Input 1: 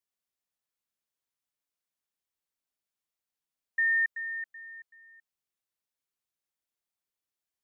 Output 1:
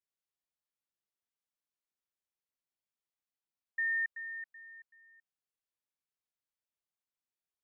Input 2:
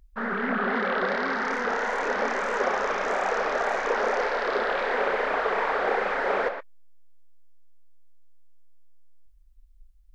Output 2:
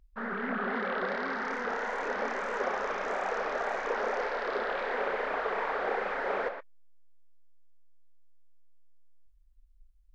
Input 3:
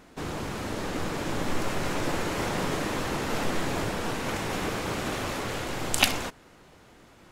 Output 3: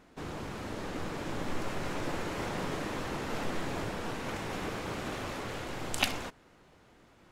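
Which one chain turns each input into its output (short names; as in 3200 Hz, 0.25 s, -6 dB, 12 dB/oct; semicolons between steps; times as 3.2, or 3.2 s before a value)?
high shelf 5700 Hz -5.5 dB; gain -6 dB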